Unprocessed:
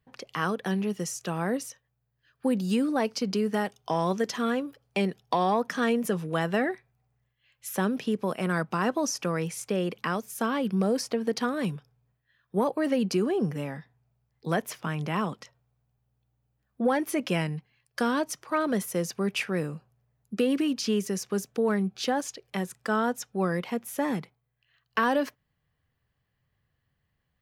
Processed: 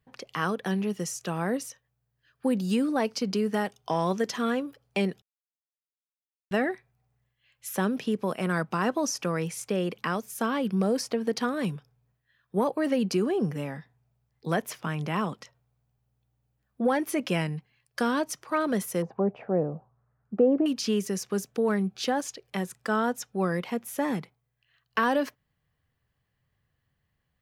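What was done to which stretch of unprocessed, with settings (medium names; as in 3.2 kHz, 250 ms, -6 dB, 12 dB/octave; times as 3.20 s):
5.22–6.51 s: mute
19.02–20.66 s: touch-sensitive low-pass 690–1500 Hz down, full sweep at -30 dBFS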